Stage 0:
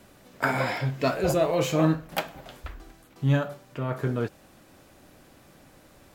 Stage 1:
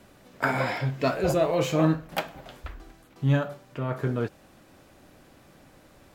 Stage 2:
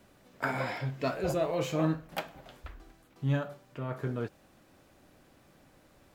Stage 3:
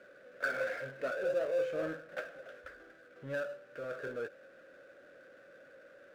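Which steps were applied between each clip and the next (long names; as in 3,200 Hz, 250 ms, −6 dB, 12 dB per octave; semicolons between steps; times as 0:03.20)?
high-shelf EQ 6,100 Hz −4.5 dB
bit-depth reduction 12 bits, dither none; level −6.5 dB
pair of resonant band-passes 900 Hz, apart 1.5 octaves; power curve on the samples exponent 0.7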